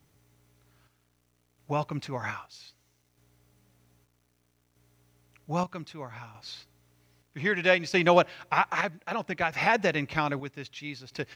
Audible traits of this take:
chopped level 0.63 Hz, depth 60%, duty 55%
a quantiser's noise floor 12 bits, dither none

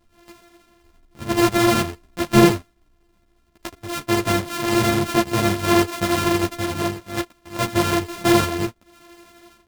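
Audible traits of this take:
a buzz of ramps at a fixed pitch in blocks of 128 samples
chopped level 12 Hz, depth 60%, duty 85%
a shimmering, thickened sound

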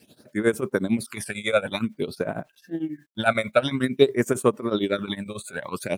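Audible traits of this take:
phaser sweep stages 12, 0.51 Hz, lowest notch 290–4,500 Hz
a quantiser's noise floor 12 bits, dither none
tremolo triangle 11 Hz, depth 90%

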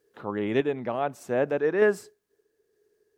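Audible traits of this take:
sample-and-hold tremolo 3.3 Hz

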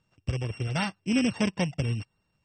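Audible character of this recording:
a buzz of ramps at a fixed pitch in blocks of 16 samples
MP3

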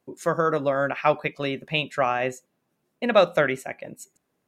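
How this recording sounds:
background noise floor −76 dBFS
spectral slope −3.0 dB per octave

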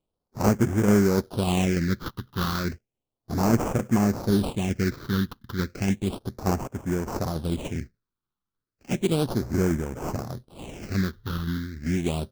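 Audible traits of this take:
tremolo saw down 3.4 Hz, depth 35%
aliases and images of a low sample rate 1,900 Hz, jitter 20%
phaser sweep stages 6, 0.33 Hz, lowest notch 610–3,900 Hz

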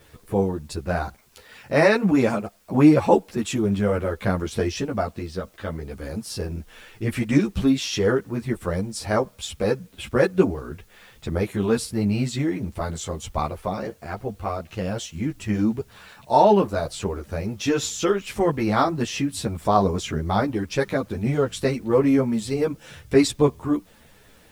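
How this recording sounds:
a quantiser's noise floor 10 bits, dither triangular
a shimmering, thickened sound

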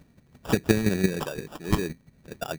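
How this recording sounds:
chopped level 5.8 Hz, depth 65%, duty 15%
phaser sweep stages 2, 3.3 Hz, lowest notch 780–2,000 Hz
aliases and images of a low sample rate 2,100 Hz, jitter 0%

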